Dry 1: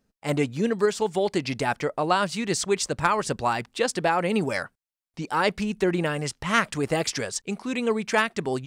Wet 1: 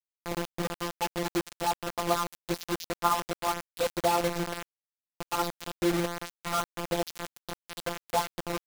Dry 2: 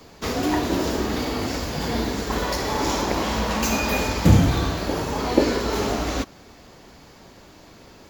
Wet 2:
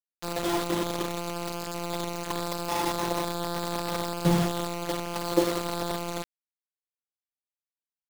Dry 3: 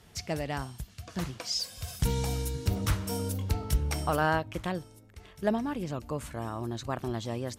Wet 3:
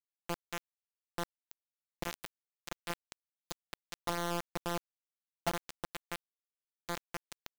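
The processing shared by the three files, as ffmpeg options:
-filter_complex "[0:a]lowpass=frequency=4500:width=0.5412,lowpass=frequency=4500:width=1.3066,afftdn=noise_reduction=35:noise_floor=-40,asuperstop=centerf=2100:order=12:qfactor=1.1,lowshelf=frequency=140:gain=-9.5,acrossover=split=730|2100[link_01][link_02][link_03];[link_03]asoftclip=type=tanh:threshold=-32dB[link_04];[link_01][link_02][link_04]amix=inputs=3:normalize=0,afftfilt=real='hypot(re,im)*cos(PI*b)':imag='0':win_size=1024:overlap=0.75,bandreject=frequency=60:width_type=h:width=6,bandreject=frequency=120:width_type=h:width=6,bandreject=frequency=180:width_type=h:width=6,bandreject=frequency=240:width_type=h:width=6,bandreject=frequency=300:width_type=h:width=6,bandreject=frequency=360:width_type=h:width=6,bandreject=frequency=420:width_type=h:width=6,bandreject=frequency=480:width_type=h:width=6,acrusher=bits=4:mix=0:aa=0.000001"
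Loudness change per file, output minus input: −6.0, −6.5, −9.5 LU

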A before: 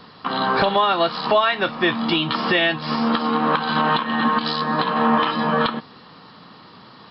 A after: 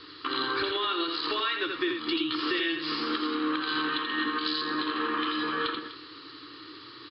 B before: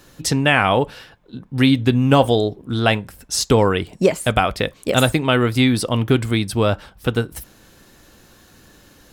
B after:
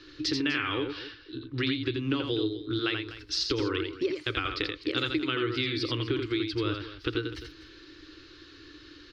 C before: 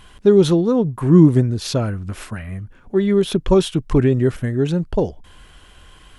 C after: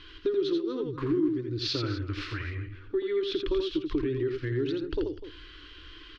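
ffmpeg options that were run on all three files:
-filter_complex "[0:a]firequalizer=gain_entry='entry(120,0);entry(200,-28);entry(300,14);entry(670,-18);entry(1200,4);entry(4500,10);entry(8200,-25);entry(12000,-30)':delay=0.05:min_phase=1,acompressor=threshold=-22dB:ratio=4,asplit=2[link_01][link_02];[link_02]aecho=0:1:84|249:0.562|0.188[link_03];[link_01][link_03]amix=inputs=2:normalize=0,volume=-6.5dB"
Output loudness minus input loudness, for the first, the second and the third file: −9.0, −12.0, −13.5 LU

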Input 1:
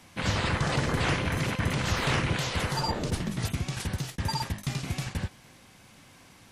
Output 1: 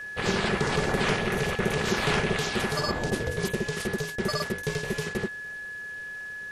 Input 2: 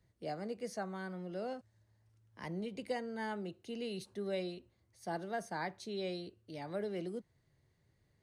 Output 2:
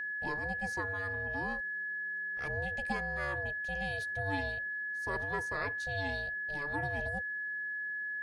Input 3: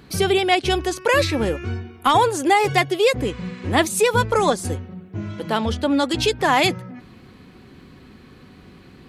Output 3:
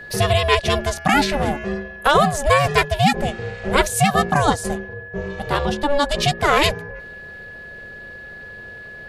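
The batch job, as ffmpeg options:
-af "aeval=exprs='val(0)*sin(2*PI*290*n/s)':channel_layout=same,aeval=exprs='val(0)+0.0112*sin(2*PI*1700*n/s)':channel_layout=same,volume=4dB"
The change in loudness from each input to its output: +1.5, +6.5, +1.0 LU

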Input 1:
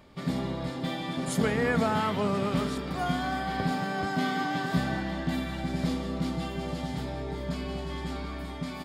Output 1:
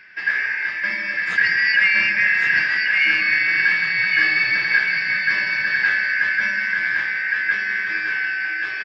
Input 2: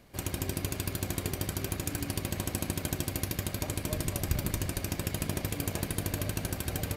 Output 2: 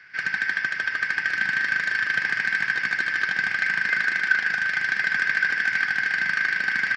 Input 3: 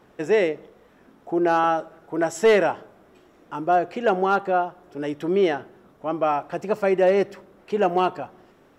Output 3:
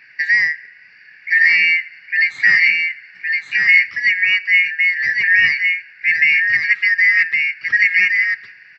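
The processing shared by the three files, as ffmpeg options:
-af "afftfilt=real='real(if(lt(b,272),68*(eq(floor(b/68),0)*2+eq(floor(b/68),1)*0+eq(floor(b/68),2)*3+eq(floor(b/68),3)*1)+mod(b,68),b),0)':imag='imag(if(lt(b,272),68*(eq(floor(b/68),0)*2+eq(floor(b/68),1)*0+eq(floor(b/68),2)*3+eq(floor(b/68),3)*1)+mod(b,68),b),0)':win_size=2048:overlap=0.75,alimiter=limit=-15dB:level=0:latency=1:release=450,highpass=100,equalizer=frequency=120:width_type=q:width=4:gain=7,equalizer=frequency=180:width_type=q:width=4:gain=5,equalizer=frequency=270:width_type=q:width=4:gain=-4,equalizer=frequency=590:width_type=q:width=4:gain=-5,equalizer=frequency=1300:width_type=q:width=4:gain=10,equalizer=frequency=2200:width_type=q:width=4:gain=7,lowpass=frequency=4700:width=0.5412,lowpass=frequency=4700:width=1.3066,aecho=1:1:1114:0.631,volume=5dB"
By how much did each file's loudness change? +13.0, +11.0, +9.5 LU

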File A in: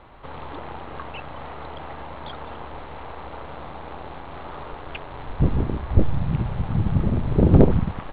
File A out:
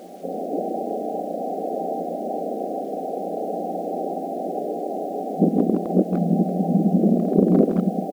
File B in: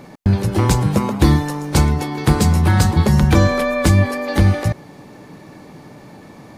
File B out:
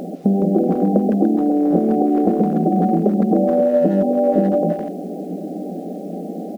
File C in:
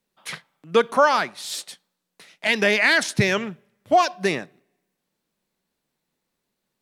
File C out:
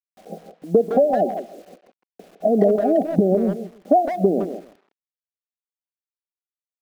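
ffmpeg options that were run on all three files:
-filter_complex "[0:a]asplit=2[link_01][link_02];[link_02]acontrast=85,volume=2dB[link_03];[link_01][link_03]amix=inputs=2:normalize=0,afftfilt=real='re*between(b*sr/4096,170,800)':imag='im*between(b*sr/4096,170,800)':win_size=4096:overlap=0.75,acompressor=threshold=-15dB:ratio=6,asplit=2[link_04][link_05];[link_05]aecho=0:1:136:0.158[link_06];[link_04][link_06]amix=inputs=2:normalize=0,acrusher=bits=8:mix=0:aa=0.000001,asplit=2[link_07][link_08];[link_08]adelay=160,highpass=300,lowpass=3400,asoftclip=type=hard:threshold=-16dB,volume=-8dB[link_09];[link_07][link_09]amix=inputs=2:normalize=0,volume=1.5dB"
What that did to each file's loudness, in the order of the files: −1.5, −1.0, +1.0 LU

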